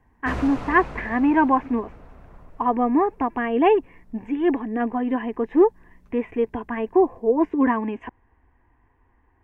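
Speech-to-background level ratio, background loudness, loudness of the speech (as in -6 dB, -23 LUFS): 15.5 dB, -37.5 LUFS, -22.0 LUFS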